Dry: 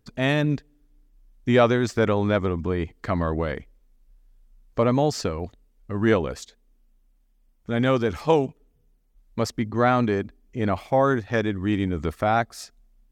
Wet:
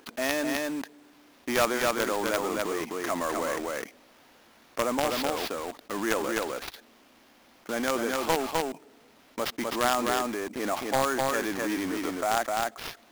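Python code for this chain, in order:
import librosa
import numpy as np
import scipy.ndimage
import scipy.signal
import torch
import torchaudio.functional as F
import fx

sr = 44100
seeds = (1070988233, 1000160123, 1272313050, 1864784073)

p1 = scipy.signal.sosfilt(scipy.signal.butter(4, 320.0, 'highpass', fs=sr, output='sos'), x)
p2 = fx.high_shelf(p1, sr, hz=2300.0, db=-6.5)
p3 = fx.quant_companded(p2, sr, bits=2)
p4 = p2 + F.gain(torch.from_numpy(p3), -8.5).numpy()
p5 = fx.peak_eq(p4, sr, hz=430.0, db=-8.5, octaves=0.73)
p6 = fx.sample_hold(p5, sr, seeds[0], rate_hz=8200.0, jitter_pct=20)
p7 = p6 + fx.echo_single(p6, sr, ms=256, db=-4.5, dry=0)
p8 = fx.env_flatten(p7, sr, amount_pct=50)
y = F.gain(torch.from_numpy(p8), -9.0).numpy()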